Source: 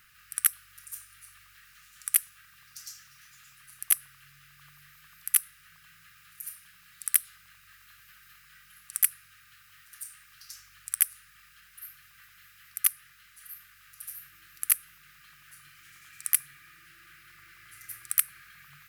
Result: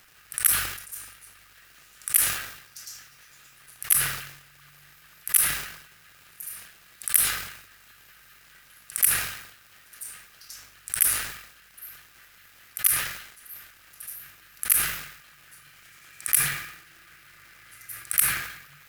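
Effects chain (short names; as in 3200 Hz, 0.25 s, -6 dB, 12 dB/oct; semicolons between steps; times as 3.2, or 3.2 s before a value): crackle 280/s -44 dBFS; sustainer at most 71 dB/s; gain +1.5 dB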